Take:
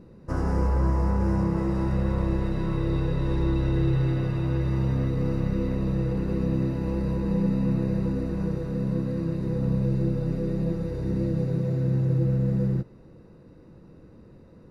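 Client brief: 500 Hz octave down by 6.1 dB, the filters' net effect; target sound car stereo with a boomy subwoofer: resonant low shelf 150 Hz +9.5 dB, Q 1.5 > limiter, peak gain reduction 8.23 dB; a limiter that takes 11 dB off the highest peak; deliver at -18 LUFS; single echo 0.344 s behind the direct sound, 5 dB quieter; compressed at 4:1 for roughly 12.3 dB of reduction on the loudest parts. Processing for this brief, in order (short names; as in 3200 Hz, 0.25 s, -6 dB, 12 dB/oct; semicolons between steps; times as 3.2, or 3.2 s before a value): bell 500 Hz -6.5 dB; compressor 4:1, threshold -36 dBFS; limiter -37 dBFS; resonant low shelf 150 Hz +9.5 dB, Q 1.5; echo 0.344 s -5 dB; gain +23 dB; limiter -10 dBFS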